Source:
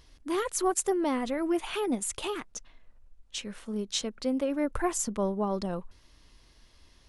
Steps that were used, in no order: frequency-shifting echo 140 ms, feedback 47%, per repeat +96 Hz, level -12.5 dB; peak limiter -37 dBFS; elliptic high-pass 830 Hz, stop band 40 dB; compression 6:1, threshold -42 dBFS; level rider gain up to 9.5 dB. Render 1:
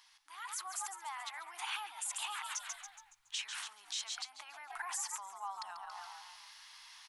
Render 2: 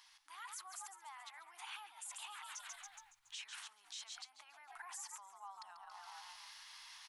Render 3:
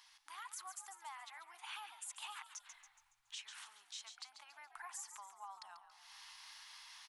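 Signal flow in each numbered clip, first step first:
frequency-shifting echo > peak limiter > elliptic high-pass > compression > level rider; frequency-shifting echo > level rider > peak limiter > elliptic high-pass > compression; level rider > compression > frequency-shifting echo > elliptic high-pass > peak limiter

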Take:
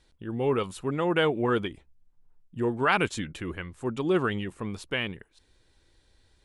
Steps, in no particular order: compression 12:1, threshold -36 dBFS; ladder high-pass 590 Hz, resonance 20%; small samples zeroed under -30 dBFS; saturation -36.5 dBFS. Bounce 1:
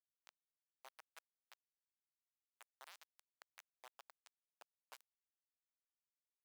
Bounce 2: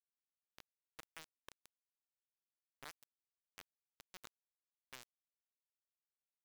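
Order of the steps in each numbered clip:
compression > small samples zeroed > saturation > ladder high-pass; ladder high-pass > compression > small samples zeroed > saturation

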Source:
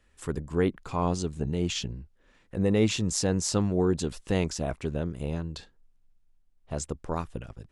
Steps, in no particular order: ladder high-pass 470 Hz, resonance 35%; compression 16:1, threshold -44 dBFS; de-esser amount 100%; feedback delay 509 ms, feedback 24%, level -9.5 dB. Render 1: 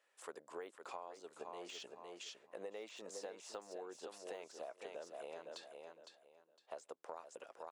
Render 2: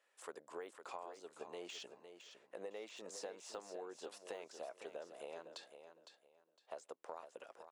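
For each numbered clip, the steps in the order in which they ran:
feedback delay > de-esser > ladder high-pass > compression; de-esser > ladder high-pass > compression > feedback delay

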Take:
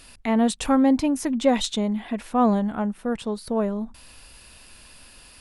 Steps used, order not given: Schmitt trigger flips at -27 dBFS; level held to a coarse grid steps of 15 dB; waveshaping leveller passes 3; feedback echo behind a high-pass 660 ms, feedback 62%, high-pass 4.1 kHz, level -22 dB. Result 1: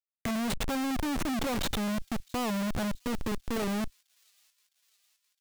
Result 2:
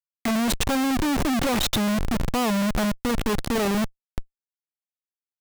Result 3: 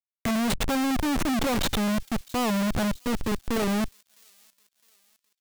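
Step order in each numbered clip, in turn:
Schmitt trigger > waveshaping leveller > level held to a coarse grid > feedback echo behind a high-pass; level held to a coarse grid > feedback echo behind a high-pass > waveshaping leveller > Schmitt trigger; Schmitt trigger > level held to a coarse grid > feedback echo behind a high-pass > waveshaping leveller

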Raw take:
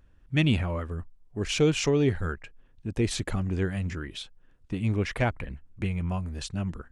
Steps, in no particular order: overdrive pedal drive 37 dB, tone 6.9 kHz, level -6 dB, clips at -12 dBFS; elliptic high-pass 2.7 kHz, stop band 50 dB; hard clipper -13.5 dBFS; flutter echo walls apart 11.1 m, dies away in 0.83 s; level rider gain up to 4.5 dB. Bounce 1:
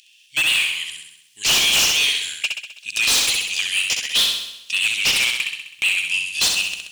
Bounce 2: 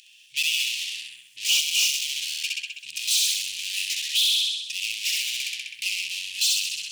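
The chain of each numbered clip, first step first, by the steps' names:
elliptic high-pass > overdrive pedal > level rider > flutter echo > hard clipper; level rider > flutter echo > overdrive pedal > elliptic high-pass > hard clipper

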